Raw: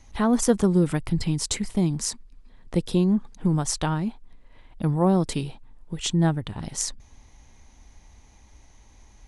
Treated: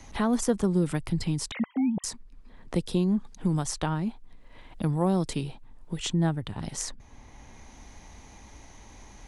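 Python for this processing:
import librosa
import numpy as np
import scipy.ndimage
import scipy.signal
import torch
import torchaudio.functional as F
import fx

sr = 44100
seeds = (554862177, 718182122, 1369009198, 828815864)

y = fx.sine_speech(x, sr, at=(1.51, 2.04))
y = fx.band_squash(y, sr, depth_pct=40)
y = y * 10.0 ** (-3.5 / 20.0)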